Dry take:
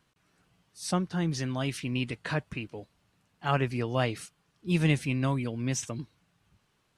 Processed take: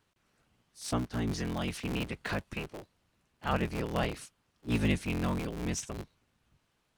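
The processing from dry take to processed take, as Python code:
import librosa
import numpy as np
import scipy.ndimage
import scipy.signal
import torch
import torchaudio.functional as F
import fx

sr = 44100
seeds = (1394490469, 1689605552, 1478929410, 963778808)

y = fx.cycle_switch(x, sr, every=3, mode='inverted')
y = fx.band_squash(y, sr, depth_pct=70, at=(1.3, 2.73))
y = y * librosa.db_to_amplitude(-3.5)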